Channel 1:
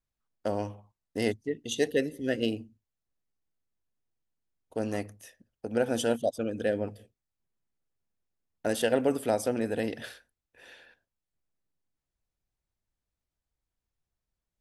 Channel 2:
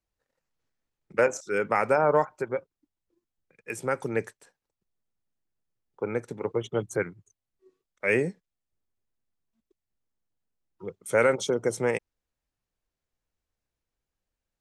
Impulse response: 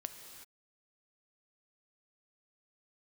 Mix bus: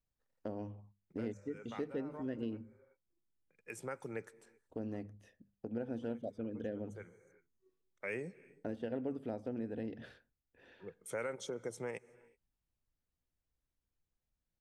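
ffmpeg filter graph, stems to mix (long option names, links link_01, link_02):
-filter_complex "[0:a]bandreject=frequency=50:width_type=h:width=6,bandreject=frequency=100:width_type=h:width=6,bandreject=frequency=150:width_type=h:width=6,bandreject=frequency=200:width_type=h:width=6,deesser=0.95,firequalizer=gain_entry='entry(250,0);entry(590,-8);entry(11000,-30)':delay=0.05:min_phase=1,volume=-0.5dB,asplit=2[link_01][link_02];[1:a]volume=-10.5dB,asplit=2[link_03][link_04];[link_04]volume=-15dB[link_05];[link_02]apad=whole_len=644199[link_06];[link_03][link_06]sidechaincompress=threshold=-49dB:ratio=8:attack=40:release=876[link_07];[2:a]atrim=start_sample=2205[link_08];[link_05][link_08]afir=irnorm=-1:irlink=0[link_09];[link_01][link_07][link_09]amix=inputs=3:normalize=0,acompressor=threshold=-42dB:ratio=2"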